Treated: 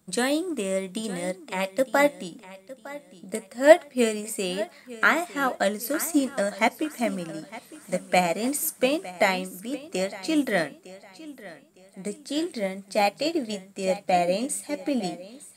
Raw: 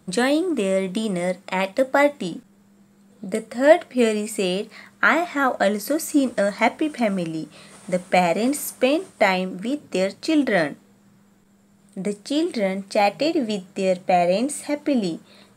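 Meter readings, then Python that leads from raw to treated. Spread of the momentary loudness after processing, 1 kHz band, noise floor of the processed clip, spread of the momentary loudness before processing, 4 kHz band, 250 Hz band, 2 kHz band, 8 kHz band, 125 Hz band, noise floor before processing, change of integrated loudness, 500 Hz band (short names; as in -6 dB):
18 LU, -4.0 dB, -54 dBFS, 11 LU, -2.5 dB, -5.5 dB, -3.0 dB, +0.5 dB, -6.5 dB, -56 dBFS, -3.5 dB, -4.0 dB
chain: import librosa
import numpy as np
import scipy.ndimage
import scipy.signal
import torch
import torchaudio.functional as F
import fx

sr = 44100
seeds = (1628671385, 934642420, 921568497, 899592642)

y = fx.high_shelf(x, sr, hz=5900.0, db=11.0)
y = fx.echo_feedback(y, sr, ms=908, feedback_pct=35, wet_db=-12.0)
y = fx.upward_expand(y, sr, threshold_db=-30.0, expansion=1.5)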